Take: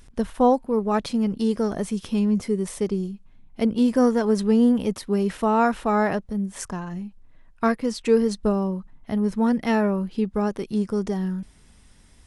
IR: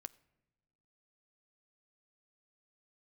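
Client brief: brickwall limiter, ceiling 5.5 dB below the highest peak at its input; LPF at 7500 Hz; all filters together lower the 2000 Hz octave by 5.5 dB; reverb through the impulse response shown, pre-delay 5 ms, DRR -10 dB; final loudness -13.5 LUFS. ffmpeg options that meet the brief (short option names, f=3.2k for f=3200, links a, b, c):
-filter_complex "[0:a]lowpass=7.5k,equalizer=f=2k:t=o:g=-7.5,alimiter=limit=-14dB:level=0:latency=1,asplit=2[a][b];[1:a]atrim=start_sample=2205,adelay=5[c];[b][c]afir=irnorm=-1:irlink=0,volume=15.5dB[d];[a][d]amix=inputs=2:normalize=0,volume=-0.5dB"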